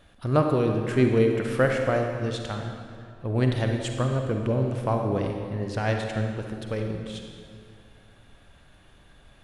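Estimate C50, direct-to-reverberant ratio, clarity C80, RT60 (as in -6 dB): 3.5 dB, 3.0 dB, 5.0 dB, 2.2 s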